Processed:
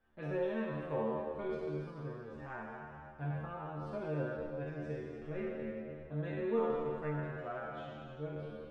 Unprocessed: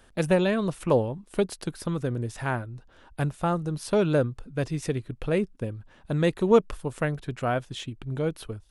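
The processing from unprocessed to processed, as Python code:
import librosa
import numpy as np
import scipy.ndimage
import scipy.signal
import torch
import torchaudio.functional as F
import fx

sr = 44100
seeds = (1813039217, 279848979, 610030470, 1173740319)

y = fx.spec_trails(x, sr, decay_s=2.7)
y = scipy.signal.sosfilt(scipy.signal.butter(2, 1900.0, 'lowpass', fs=sr, output='sos'), y)
y = fx.stiff_resonator(y, sr, f0_hz=73.0, decay_s=0.53, stiffness=0.002)
y = y * librosa.db_to_amplitude(-6.5)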